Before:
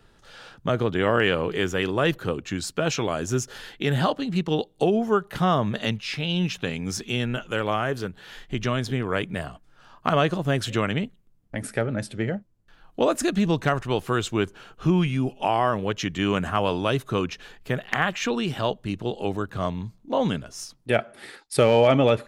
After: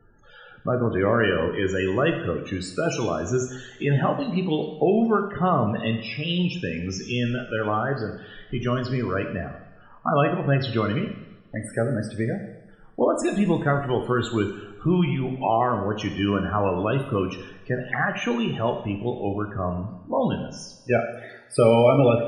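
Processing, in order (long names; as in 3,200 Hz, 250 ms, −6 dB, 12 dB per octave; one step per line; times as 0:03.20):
spectral peaks only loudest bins 32
coupled-rooms reverb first 0.84 s, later 2.3 s, from −21 dB, DRR 4.5 dB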